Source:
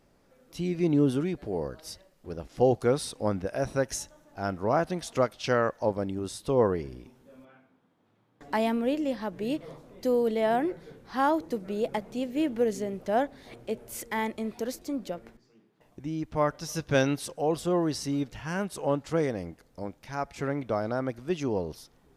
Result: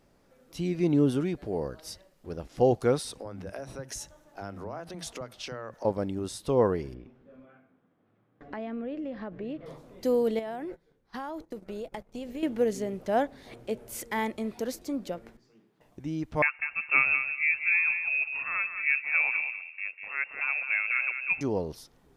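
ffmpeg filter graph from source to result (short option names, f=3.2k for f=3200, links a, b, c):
-filter_complex "[0:a]asettb=1/sr,asplit=3[a][b][c];[a]atrim=end=3.004[d];[b]atrim=start=3:end=5.85,asetpts=PTS-STARTPTS,afade=t=in:d=0.004:c=qsin,afade=t=out:st=2.846:d=0.004:c=qsin,acompressor=threshold=-33dB:ratio=16:attack=3.2:release=140:knee=1:detection=peak,acrossover=split=230[e][f];[e]adelay=40[g];[g][f]amix=inputs=2:normalize=0,atrim=end_sample=125685[h];[c]atrim=start=5.846[i];[d][h]acrossfade=d=0.004:c1=hsin:c2=qsin[j];[j][i]acrossfade=d=0.004:c1=qsin:c2=hsin,asettb=1/sr,asplit=3[k][l][m];[k]atrim=end=6.944[n];[l]atrim=start=6.94:end=9.66,asetpts=PTS-STARTPTS,afade=t=in:d=0.004:c=qsin,afade=t=out:st=2.716:d=0.004:c=qsin,acompressor=threshold=-32dB:ratio=5:attack=3.2:release=140:knee=1:detection=peak,lowpass=2.2k,equalizer=f=920:t=o:w=0.2:g=-9.5[o];[m]atrim=start=9.656[p];[n][o]acrossfade=d=0.004:c1=hsin:c2=qsin[q];[q][p]acrossfade=d=0.004:c1=qsin:c2=hsin,asettb=1/sr,asplit=3[r][s][t];[r]atrim=end=10.394[u];[s]atrim=start=10.39:end=12.43,asetpts=PTS-STARTPTS,afade=t=in:d=0.004:c=qsin,afade=t=out:st=2.036:d=0.004:c=qsin,asubboost=boost=7.5:cutoff=72,acompressor=threshold=-33dB:ratio=8:attack=3.2:release=140:knee=1:detection=peak,agate=range=-20dB:threshold=-43dB:ratio=16:release=100:detection=peak[v];[t]atrim=start=12.426[w];[u][v]acrossfade=d=0.004:c1=hsin:c2=qsin[x];[x][w]acrossfade=d=0.004:c1=qsin:c2=hsin,asettb=1/sr,asplit=3[y][z][aa];[y]atrim=end=16.424[ab];[z]atrim=start=16.42:end=21.41,asetpts=PTS-STARTPTS,afade=t=in:d=0.004:c=qsin,afade=t=out:st=4.986:d=0.004:c=qsin,asplit=2[ac][ad];[ad]adelay=196,lowpass=f=1.4k:p=1,volume=-6.5dB,asplit=2[ae][af];[af]adelay=196,lowpass=f=1.4k:p=1,volume=0.21,asplit=2[ag][ah];[ah]adelay=196,lowpass=f=1.4k:p=1,volume=0.21[ai];[ac][ae][ag][ai]amix=inputs=4:normalize=0,atrim=end_sample=220059,lowpass=f=2.4k:t=q:w=0.5098,lowpass=f=2.4k:t=q:w=0.6013,lowpass=f=2.4k:t=q:w=0.9,lowpass=f=2.4k:t=q:w=2.563,afreqshift=-2800[aj];[aa]atrim=start=21.406[ak];[ab][aj]acrossfade=d=0.004:c1=hsin:c2=qsin[al];[al][ak]acrossfade=d=0.004:c1=qsin:c2=hsin"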